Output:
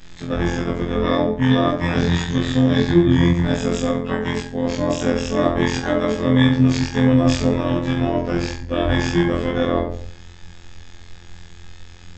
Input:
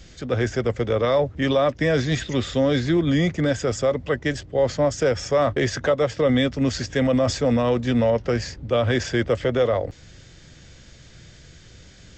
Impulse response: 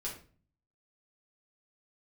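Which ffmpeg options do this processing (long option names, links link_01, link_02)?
-filter_complex "[1:a]atrim=start_sample=2205,asetrate=32193,aresample=44100[link_01];[0:a][link_01]afir=irnorm=-1:irlink=0,afftfilt=real='hypot(re,im)*cos(PI*b)':imag='0':win_size=2048:overlap=0.75,asplit=2[link_02][link_03];[link_03]asetrate=22050,aresample=44100,atempo=2,volume=-2dB[link_04];[link_02][link_04]amix=inputs=2:normalize=0,volume=1.5dB"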